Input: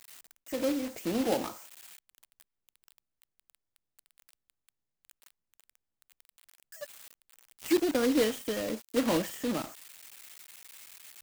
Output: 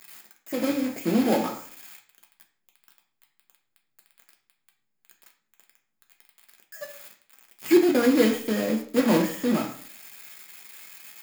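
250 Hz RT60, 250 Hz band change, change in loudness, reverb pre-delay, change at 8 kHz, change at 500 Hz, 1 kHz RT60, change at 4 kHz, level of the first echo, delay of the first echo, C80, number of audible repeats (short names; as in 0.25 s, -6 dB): 0.60 s, +8.0 dB, +7.0 dB, 3 ms, +2.5 dB, +6.0 dB, 0.50 s, +3.0 dB, none, none, 13.5 dB, none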